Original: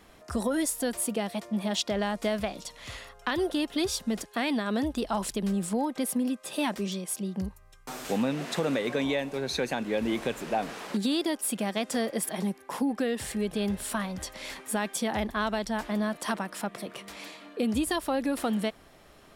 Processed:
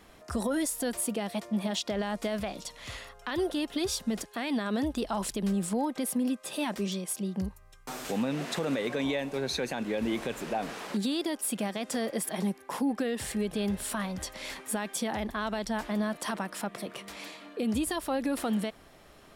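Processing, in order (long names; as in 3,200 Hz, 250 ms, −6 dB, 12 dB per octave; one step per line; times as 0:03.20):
brickwall limiter −21.5 dBFS, peak gain reduction 8 dB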